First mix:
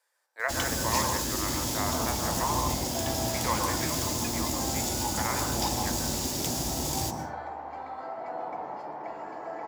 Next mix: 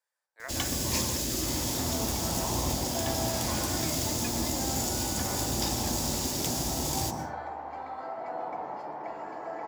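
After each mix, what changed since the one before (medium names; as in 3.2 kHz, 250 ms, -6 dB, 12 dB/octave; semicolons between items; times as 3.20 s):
speech -12.0 dB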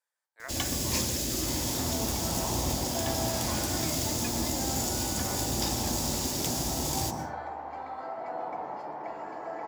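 speech: send -9.0 dB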